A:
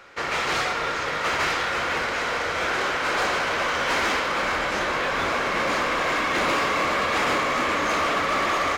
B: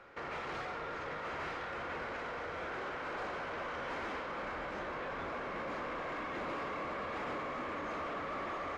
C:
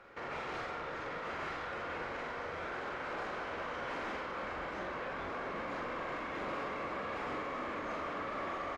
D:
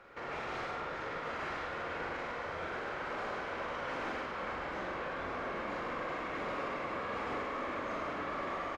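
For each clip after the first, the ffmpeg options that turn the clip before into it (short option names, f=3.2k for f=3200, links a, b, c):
-af "lowpass=f=1.1k:p=1,alimiter=level_in=5dB:limit=-24dB:level=0:latency=1,volume=-5dB,volume=-4.5dB"
-filter_complex "[0:a]asplit=2[a][b];[b]adelay=44,volume=-4.5dB[c];[a][c]amix=inputs=2:normalize=0,volume=-1dB"
-af "aecho=1:1:105:0.562"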